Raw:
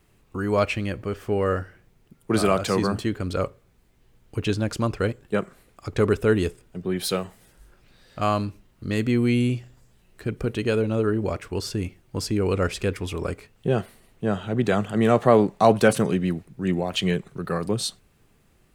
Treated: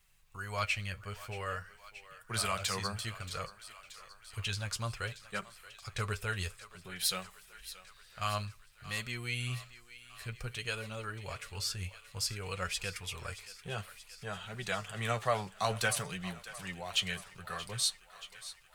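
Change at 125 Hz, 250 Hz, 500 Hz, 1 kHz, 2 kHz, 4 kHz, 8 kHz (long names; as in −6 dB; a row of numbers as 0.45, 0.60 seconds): −13.0, −23.5, −19.0, −11.0, −5.5, −2.5, −1.0 decibels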